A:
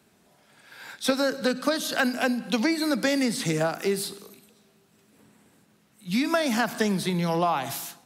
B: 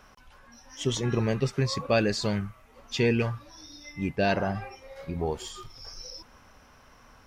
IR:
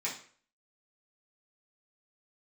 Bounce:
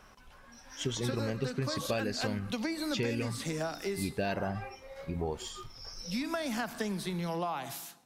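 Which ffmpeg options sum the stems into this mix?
-filter_complex "[0:a]volume=-8.5dB[link_01];[1:a]volume=-2dB[link_02];[link_01][link_02]amix=inputs=2:normalize=0,acompressor=threshold=-29dB:ratio=6"

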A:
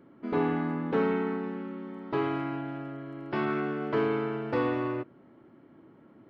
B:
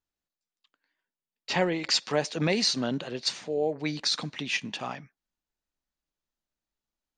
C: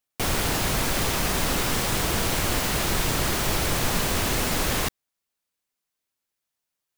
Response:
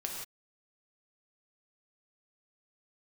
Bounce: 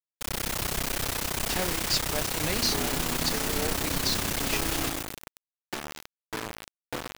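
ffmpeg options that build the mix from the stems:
-filter_complex "[0:a]bandreject=frequency=50:width_type=h:width=6,bandreject=frequency=100:width_type=h:width=6,bandreject=frequency=150:width_type=h:width=6,bandreject=frequency=200:width_type=h:width=6,acompressor=threshold=-41dB:ratio=3,adelay=2400,volume=-3.5dB,asplit=2[link_01][link_02];[link_02]volume=-5.5dB[link_03];[1:a]volume=-12dB[link_04];[2:a]highshelf=frequency=4800:gain=-8.5,tremolo=f=32:d=0.919,volume=-9dB,asplit=2[link_05][link_06];[link_06]volume=-5dB[link_07];[3:a]atrim=start_sample=2205[link_08];[link_03][link_08]afir=irnorm=-1:irlink=0[link_09];[link_07]aecho=0:1:131|262|393|524|655|786|917|1048:1|0.54|0.292|0.157|0.085|0.0459|0.0248|0.0134[link_10];[link_01][link_04][link_05][link_09][link_10]amix=inputs=5:normalize=0,highshelf=frequency=3600:gain=9.5,dynaudnorm=framelen=180:gausssize=3:maxgain=4dB,acrusher=bits=4:mix=0:aa=0.000001"

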